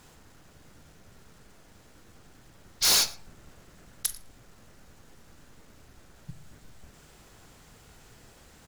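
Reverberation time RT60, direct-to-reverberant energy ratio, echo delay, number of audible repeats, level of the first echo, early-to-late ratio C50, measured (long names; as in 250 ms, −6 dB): 0.55 s, 10.5 dB, 112 ms, 1, −22.5 dB, 13.5 dB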